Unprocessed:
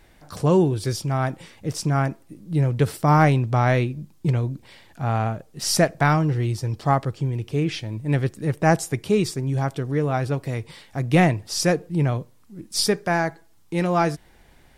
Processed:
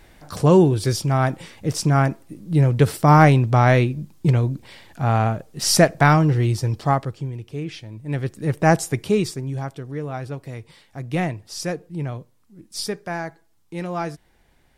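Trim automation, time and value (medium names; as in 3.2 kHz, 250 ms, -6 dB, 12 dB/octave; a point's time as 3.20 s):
6.65 s +4 dB
7.45 s -6.5 dB
7.97 s -6.5 dB
8.53 s +2 dB
9.03 s +2 dB
9.77 s -6.5 dB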